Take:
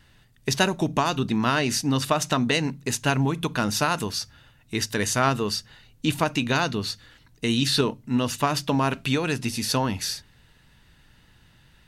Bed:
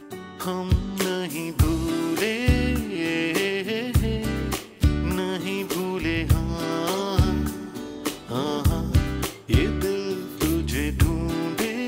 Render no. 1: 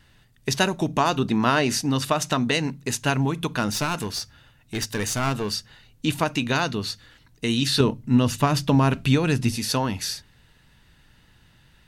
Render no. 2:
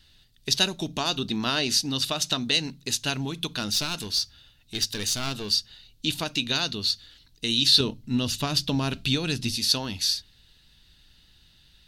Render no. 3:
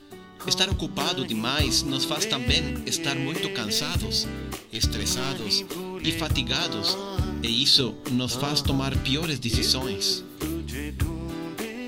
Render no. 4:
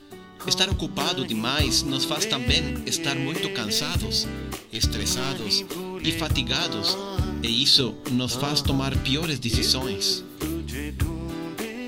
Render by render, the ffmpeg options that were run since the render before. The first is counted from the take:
-filter_complex "[0:a]asettb=1/sr,asplit=3[a][b][c];[a]atrim=end=1.004[d];[b]atrim=start=1:end=1.86,asetpts=PTS-STARTPTS,afade=t=in:d=0.004:c=qsin,afade=t=out:st=0.856:d=0.004:c=qsin,equalizer=f=600:t=o:w=2.6:g=4[e];[c]atrim=start=1.856[f];[d][e]acrossfade=d=0.004:c1=hsin:c2=qsin[g];[g][f]acrossfade=d=0.004:c1=qsin:c2=hsin,asettb=1/sr,asplit=3[h][i][j];[h]atrim=end=3.714[k];[i]atrim=start=3.71:end=5.53,asetpts=PTS-STARTPTS,afade=t=in:d=0.004:c=qsin,afade=t=out:st=1.816:d=0.004:c=qsin,aeval=exprs='clip(val(0),-1,0.0531)':c=same[l];[j]atrim=start=5.526[m];[k][l]acrossfade=d=0.004:c1=hsin:c2=qsin[n];[n][m]acrossfade=d=0.004:c1=qsin:c2=hsin,asettb=1/sr,asplit=3[o][p][q];[o]atrim=end=7.804[r];[p]atrim=start=7.8:end=9.57,asetpts=PTS-STARTPTS,afade=t=in:d=0.004:c=qsin,afade=t=out:st=1.766:d=0.004:c=qsin,lowshelf=f=230:g=10.5[s];[q]atrim=start=9.566[t];[r][s]acrossfade=d=0.004:c1=hsin:c2=qsin[u];[u][t]acrossfade=d=0.004:c1=qsin:c2=hsin"
-af "equalizer=f=125:t=o:w=1:g=-8,equalizer=f=250:t=o:w=1:g=-4,equalizer=f=500:t=o:w=1:g=-6,equalizer=f=1k:t=o:w=1:g=-9,equalizer=f=2k:t=o:w=1:g=-7,equalizer=f=4k:t=o:w=1:g=10,equalizer=f=8k:t=o:w=1:g=-3"
-filter_complex "[1:a]volume=-7dB[a];[0:a][a]amix=inputs=2:normalize=0"
-af "volume=1dB"

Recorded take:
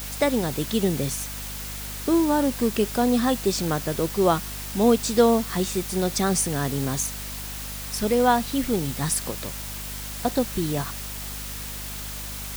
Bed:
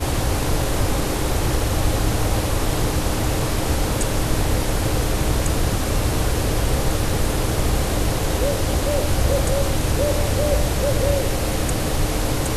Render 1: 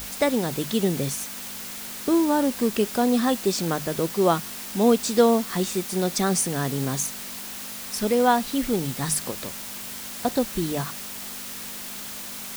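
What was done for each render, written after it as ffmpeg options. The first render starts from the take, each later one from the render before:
-af "bandreject=f=50:t=h:w=6,bandreject=f=100:t=h:w=6,bandreject=f=150:t=h:w=6"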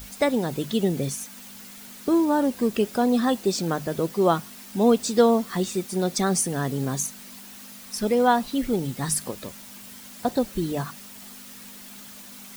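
-af "afftdn=nr=9:nf=-36"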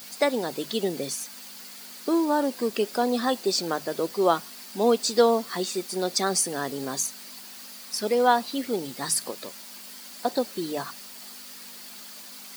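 -af "highpass=330,equalizer=f=4.6k:t=o:w=0.26:g=8.5"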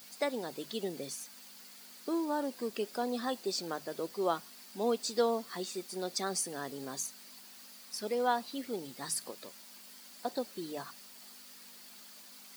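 -af "volume=-10dB"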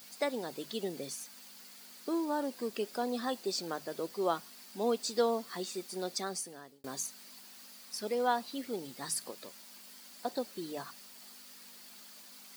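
-filter_complex "[0:a]asplit=2[a][b];[a]atrim=end=6.84,asetpts=PTS-STARTPTS,afade=t=out:st=6.07:d=0.77[c];[b]atrim=start=6.84,asetpts=PTS-STARTPTS,afade=t=in:d=0.004:c=hsin[d];[c][d]concat=n=2:v=0:a=1"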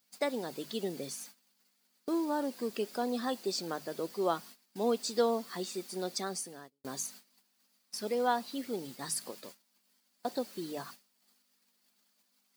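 -af "agate=range=-22dB:threshold=-49dB:ratio=16:detection=peak,equalizer=f=160:t=o:w=2.2:g=2.5"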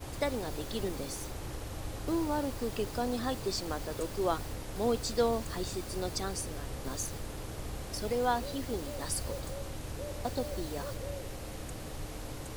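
-filter_complex "[1:a]volume=-20dB[a];[0:a][a]amix=inputs=2:normalize=0"

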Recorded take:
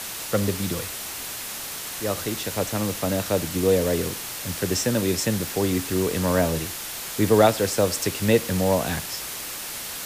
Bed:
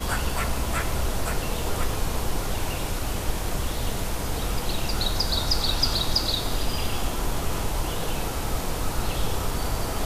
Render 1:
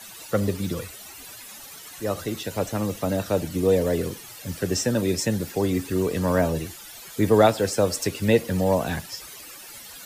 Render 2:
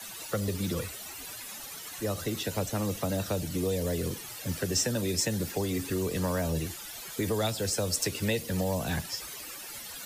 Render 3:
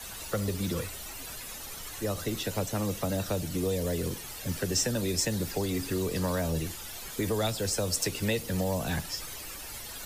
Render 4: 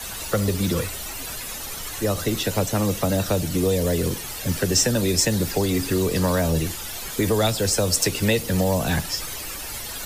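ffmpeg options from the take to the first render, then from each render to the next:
-af "afftdn=nr=14:nf=-34"
-filter_complex "[0:a]acrossover=split=350|910[a][b][c];[a]alimiter=limit=-24dB:level=0:latency=1[d];[d][b][c]amix=inputs=3:normalize=0,acrossover=split=180|3000[e][f][g];[f]acompressor=threshold=-30dB:ratio=6[h];[e][h][g]amix=inputs=3:normalize=0"
-filter_complex "[1:a]volume=-23.5dB[a];[0:a][a]amix=inputs=2:normalize=0"
-af "volume=8.5dB"

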